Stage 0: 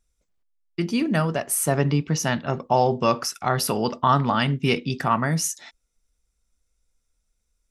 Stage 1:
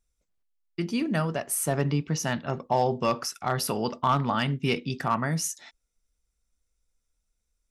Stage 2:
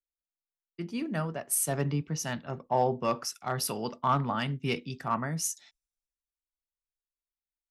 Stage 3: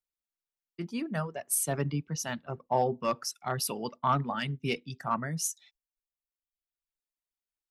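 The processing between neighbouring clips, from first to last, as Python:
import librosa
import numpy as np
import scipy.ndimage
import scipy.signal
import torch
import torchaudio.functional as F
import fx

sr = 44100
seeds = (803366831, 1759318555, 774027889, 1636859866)

y1 = np.clip(x, -10.0 ** (-10.0 / 20.0), 10.0 ** (-10.0 / 20.0))
y1 = y1 * 10.0 ** (-4.5 / 20.0)
y2 = fx.band_widen(y1, sr, depth_pct=70)
y2 = y2 * 10.0 ** (-4.5 / 20.0)
y3 = fx.dereverb_blind(y2, sr, rt60_s=1.1)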